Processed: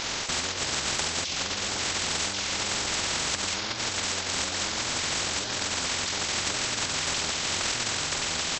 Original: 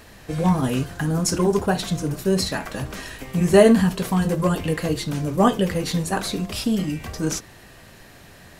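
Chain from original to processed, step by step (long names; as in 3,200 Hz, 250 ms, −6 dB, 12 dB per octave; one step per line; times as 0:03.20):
high-pass filter 67 Hz 6 dB per octave
high-shelf EQ 3,500 Hz +8 dB
mains-hum notches 50/100/150/200/250/300/350/400/450 Hz
noise gate −39 dBFS, range −12 dB
parametric band 8,000 Hz +8 dB 0.96 octaves
on a send: single-tap delay 1,085 ms −6.5 dB
on the sum: four-comb reverb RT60 0.57 s, combs from 30 ms, DRR −1 dB
compressor whose output falls as the input rises −25 dBFS, ratio −1
pitch shifter −11.5 semitones
sample-and-hold tremolo
every bin compressed towards the loudest bin 10 to 1
level −4.5 dB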